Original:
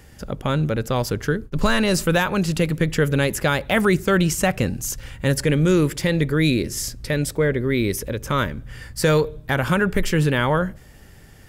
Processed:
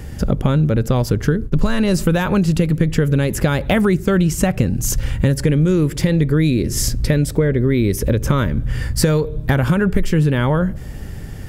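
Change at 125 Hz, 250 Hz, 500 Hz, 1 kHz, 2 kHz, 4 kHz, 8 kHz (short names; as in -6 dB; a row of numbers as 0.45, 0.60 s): +6.5, +5.0, +1.5, -1.0, -2.5, -1.0, +2.5 dB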